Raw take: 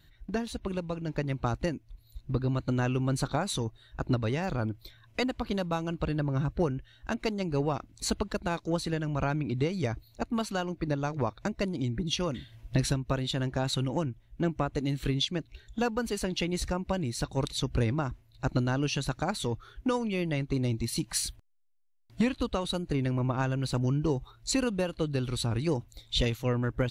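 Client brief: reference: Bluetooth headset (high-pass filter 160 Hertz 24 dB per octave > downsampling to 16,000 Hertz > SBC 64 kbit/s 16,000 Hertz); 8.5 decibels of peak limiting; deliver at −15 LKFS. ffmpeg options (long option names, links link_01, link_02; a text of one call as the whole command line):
ffmpeg -i in.wav -af "alimiter=level_in=1.5dB:limit=-24dB:level=0:latency=1,volume=-1.5dB,highpass=frequency=160:width=0.5412,highpass=frequency=160:width=1.3066,aresample=16000,aresample=44100,volume=22dB" -ar 16000 -c:a sbc -b:a 64k out.sbc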